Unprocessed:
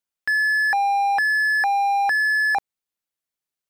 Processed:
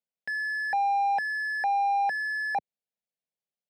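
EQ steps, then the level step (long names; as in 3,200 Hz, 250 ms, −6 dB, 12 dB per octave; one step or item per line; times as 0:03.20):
high-pass filter 110 Hz
low-pass filter 1,400 Hz 6 dB per octave
phaser with its sweep stopped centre 320 Hz, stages 6
0.0 dB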